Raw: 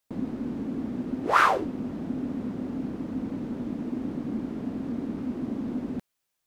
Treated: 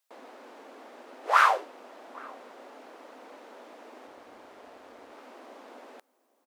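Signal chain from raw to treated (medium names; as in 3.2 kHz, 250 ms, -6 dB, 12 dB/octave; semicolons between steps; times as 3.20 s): high-pass 560 Hz 24 dB/octave; 4.07–5.12 s: AM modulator 190 Hz, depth 25%; echo from a far wall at 140 m, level -23 dB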